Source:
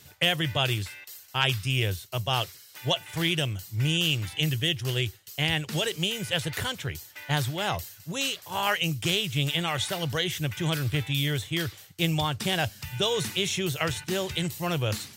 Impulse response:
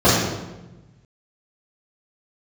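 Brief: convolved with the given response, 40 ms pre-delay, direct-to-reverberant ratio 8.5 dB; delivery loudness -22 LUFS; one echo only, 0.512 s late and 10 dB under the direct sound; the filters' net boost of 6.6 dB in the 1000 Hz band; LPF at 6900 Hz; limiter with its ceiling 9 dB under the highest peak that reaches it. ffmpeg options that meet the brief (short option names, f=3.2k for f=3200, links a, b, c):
-filter_complex "[0:a]lowpass=6.9k,equalizer=f=1k:t=o:g=8.5,alimiter=limit=-16dB:level=0:latency=1,aecho=1:1:512:0.316,asplit=2[a][b];[1:a]atrim=start_sample=2205,adelay=40[c];[b][c]afir=irnorm=-1:irlink=0,volume=-34dB[d];[a][d]amix=inputs=2:normalize=0,volume=5dB"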